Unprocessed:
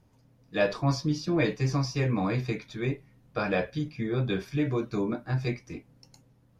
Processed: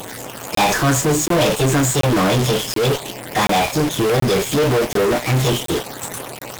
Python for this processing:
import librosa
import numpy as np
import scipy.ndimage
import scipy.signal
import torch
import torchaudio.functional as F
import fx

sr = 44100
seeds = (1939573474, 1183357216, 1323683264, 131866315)

p1 = fx.delta_mod(x, sr, bps=64000, step_db=-39.0)
p2 = fx.formant_shift(p1, sr, semitones=6)
p3 = fx.fuzz(p2, sr, gain_db=47.0, gate_db=-45.0)
p4 = p2 + (p3 * 10.0 ** (-3.5 / 20.0))
y = fx.buffer_crackle(p4, sr, first_s=0.55, period_s=0.73, block=1024, kind='zero')